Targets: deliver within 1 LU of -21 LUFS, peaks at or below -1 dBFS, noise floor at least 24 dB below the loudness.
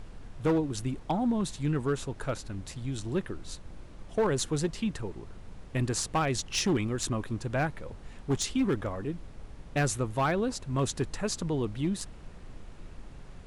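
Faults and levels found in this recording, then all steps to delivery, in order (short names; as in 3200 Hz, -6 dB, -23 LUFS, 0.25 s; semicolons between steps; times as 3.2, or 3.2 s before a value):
clipped 0.8%; flat tops at -21.0 dBFS; noise floor -47 dBFS; noise floor target -55 dBFS; loudness -31.0 LUFS; peak -21.0 dBFS; loudness target -21.0 LUFS
-> clip repair -21 dBFS; noise print and reduce 8 dB; gain +10 dB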